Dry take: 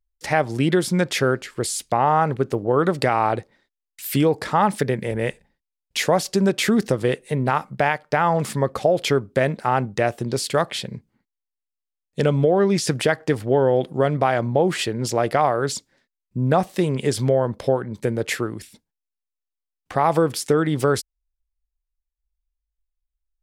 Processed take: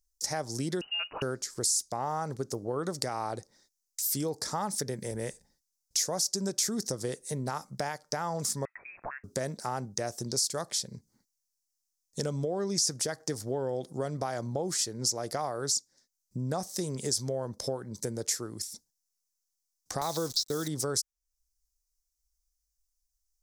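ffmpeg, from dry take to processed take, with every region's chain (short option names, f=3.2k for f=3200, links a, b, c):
-filter_complex "[0:a]asettb=1/sr,asplit=3[a][b][c];[a]atrim=end=0.814[d];[b]atrim=start=0.81:end=1.22,asetpts=PTS-STARTPTS,afade=t=in:d=0.004:c=qsin,afade=t=out:st=0.406:d=0.004:c=qsin,aemphasis=mode=reproduction:type=bsi,lowpass=f=2.6k:t=q:w=0.5098,lowpass=f=2.6k:t=q:w=0.6013,lowpass=f=2.6k:t=q:w=0.9,lowpass=f=2.6k:t=q:w=2.563,afreqshift=-3000[e];[c]atrim=start=1.216[f];[d][e]acrossfade=d=0.004:c1=hsin:c2=qsin[g];[g][f]acrossfade=d=0.004:c1=qsin:c2=hsin,asettb=1/sr,asplit=3[h][i][j];[h]atrim=end=8.654[k];[i]atrim=start=8.65:end=9.24,asetpts=PTS-STARTPTS,afade=t=in:d=0.004:c=qsin,afade=t=out:st=0.586:d=0.004:c=qsin,highpass=f=1k:w=0.5412,highpass=f=1k:w=1.3066,lowpass=f=2.6k:t=q:w=0.5098,lowpass=f=2.6k:t=q:w=0.6013,lowpass=f=2.6k:t=q:w=0.9,lowpass=f=2.6k:t=q:w=2.563,afreqshift=-3100[l];[j]atrim=start=9.236[m];[k][l]acrossfade=d=0.004:c1=hsin:c2=qsin[n];[n][m]acrossfade=d=0.004:c1=qsin:c2=hsin,asettb=1/sr,asplit=3[o][p][q];[o]atrim=end=20.014[r];[p]atrim=start=20.01:end=20.68,asetpts=PTS-STARTPTS,afade=t=in:d=0.004:c=qsin,afade=t=out:st=0.666:d=0.004:c=qsin,agate=range=-19dB:threshold=-30dB:ratio=16:release=100:detection=peak,lowpass=f=3.9k:t=q:w=10,acrusher=bits=7:dc=4:mix=0:aa=0.000001[s];[q]atrim=start=20.676[t];[r][s]acrossfade=d=0.004:c1=hsin:c2=qsin[u];[u][t]acrossfade=d=0.004:c1=qsin:c2=hsin,highshelf=f=4k:t=q:w=3:g=13.5,acompressor=threshold=-35dB:ratio=2,volume=-3dB"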